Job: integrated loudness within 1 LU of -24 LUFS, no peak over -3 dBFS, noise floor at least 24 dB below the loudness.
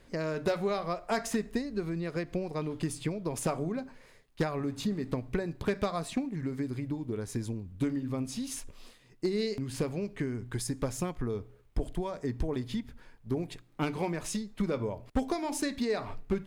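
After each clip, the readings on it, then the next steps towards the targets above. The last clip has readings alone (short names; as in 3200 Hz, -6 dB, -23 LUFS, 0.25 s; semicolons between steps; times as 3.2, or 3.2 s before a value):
clipped 0.4%; flat tops at -21.5 dBFS; loudness -34.0 LUFS; peak -21.5 dBFS; loudness target -24.0 LUFS
-> clip repair -21.5 dBFS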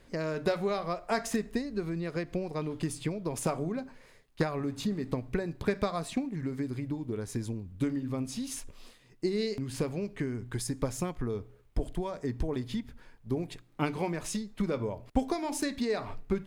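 clipped 0.0%; loudness -34.0 LUFS; peak -13.5 dBFS; loudness target -24.0 LUFS
-> gain +10 dB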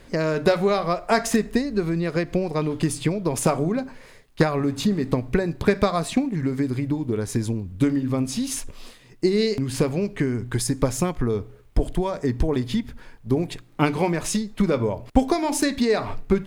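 loudness -24.0 LUFS; peak -3.5 dBFS; noise floor -49 dBFS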